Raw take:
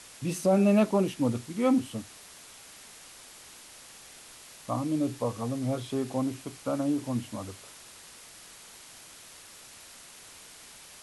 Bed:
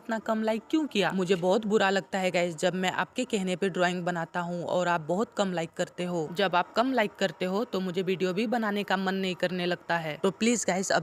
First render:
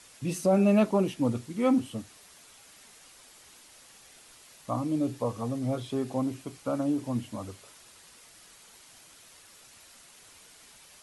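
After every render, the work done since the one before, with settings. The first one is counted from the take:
broadband denoise 6 dB, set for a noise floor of −50 dBFS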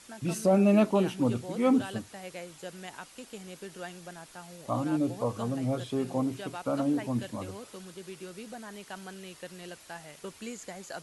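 mix in bed −15.5 dB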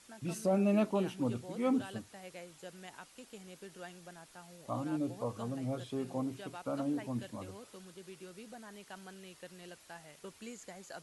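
level −7 dB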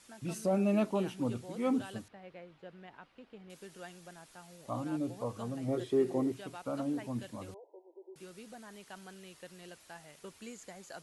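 0:02.08–0:03.50: high-frequency loss of the air 370 metres
0:05.68–0:06.32: hollow resonant body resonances 370/1,900 Hz, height 16 dB, ringing for 40 ms
0:07.54–0:08.16: linear-phase brick-wall band-pass 310–1,000 Hz

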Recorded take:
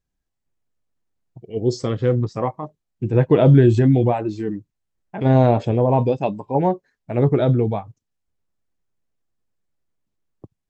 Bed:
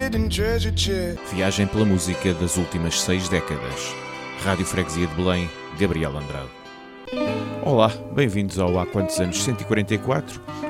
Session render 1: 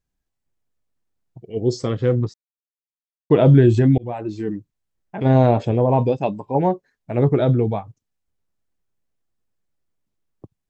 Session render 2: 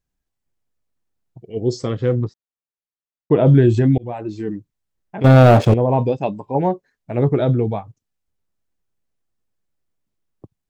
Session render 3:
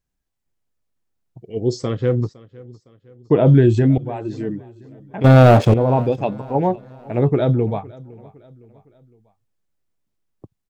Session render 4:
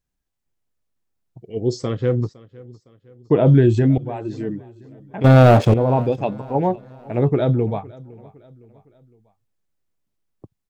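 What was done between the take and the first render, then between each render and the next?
0:02.34–0:03.30: silence; 0:03.98–0:04.54: fade in equal-power
0:02.24–0:03.47: low-pass filter 1,900 Hz 6 dB per octave; 0:05.24–0:05.74: leveller curve on the samples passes 3
repeating echo 510 ms, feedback 45%, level −22 dB
level −1 dB

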